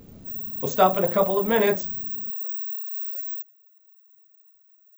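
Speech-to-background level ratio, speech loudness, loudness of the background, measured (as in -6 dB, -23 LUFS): 5.5 dB, -22.5 LUFS, -28.0 LUFS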